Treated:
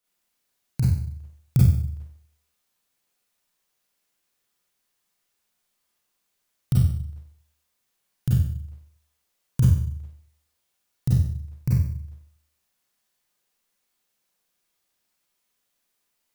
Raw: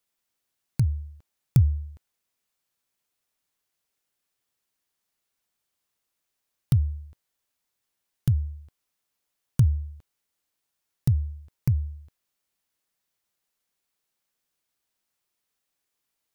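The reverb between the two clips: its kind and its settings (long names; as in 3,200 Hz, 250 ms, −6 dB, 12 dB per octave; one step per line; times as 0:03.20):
four-comb reverb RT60 0.59 s, combs from 31 ms, DRR −7 dB
level −2.5 dB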